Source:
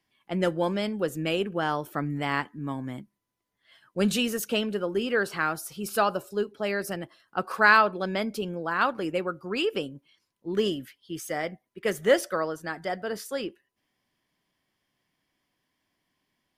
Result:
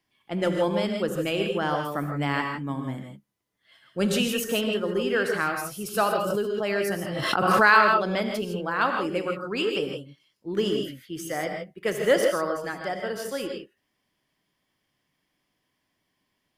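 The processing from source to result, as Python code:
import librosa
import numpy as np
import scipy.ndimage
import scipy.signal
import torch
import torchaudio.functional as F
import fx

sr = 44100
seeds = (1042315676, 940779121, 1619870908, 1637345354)

y = fx.rev_gated(x, sr, seeds[0], gate_ms=180, shape='rising', drr_db=3.5)
y = fx.pre_swell(y, sr, db_per_s=27.0, at=(6.24, 8.34))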